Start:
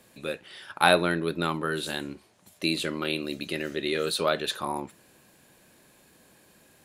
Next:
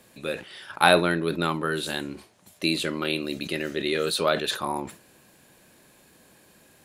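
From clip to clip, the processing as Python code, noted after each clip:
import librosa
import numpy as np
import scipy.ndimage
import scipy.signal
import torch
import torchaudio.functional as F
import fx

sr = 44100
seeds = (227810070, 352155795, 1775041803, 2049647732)

y = fx.sustainer(x, sr, db_per_s=150.0)
y = F.gain(torch.from_numpy(y), 2.0).numpy()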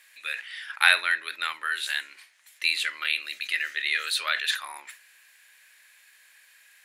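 y = fx.highpass_res(x, sr, hz=1900.0, q=3.1)
y = F.gain(torch.from_numpy(y), -1.0).numpy()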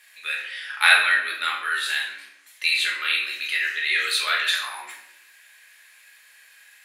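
y = fx.peak_eq(x, sr, hz=150.0, db=-13.5, octaves=0.4)
y = fx.room_shoebox(y, sr, seeds[0], volume_m3=190.0, walls='mixed', distance_m=1.4)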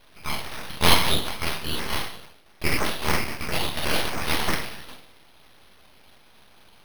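y = fx.peak_eq(x, sr, hz=3500.0, db=8.5, octaves=1.0)
y = np.repeat(scipy.signal.resample_poly(y, 1, 6), 6)[:len(y)]
y = np.abs(y)
y = F.gain(torch.from_numpy(y), -1.5).numpy()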